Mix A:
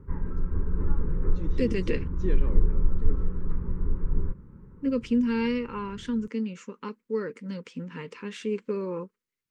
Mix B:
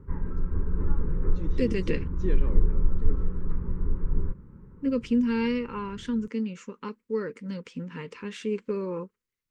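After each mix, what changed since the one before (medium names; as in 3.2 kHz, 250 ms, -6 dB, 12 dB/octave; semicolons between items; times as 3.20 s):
second voice: remove high-pass 120 Hz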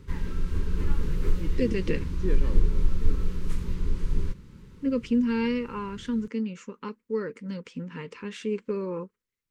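background: remove low-pass 1.4 kHz 24 dB/octave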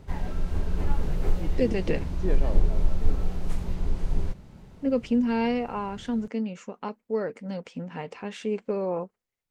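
master: remove Butterworth band-stop 700 Hz, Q 1.4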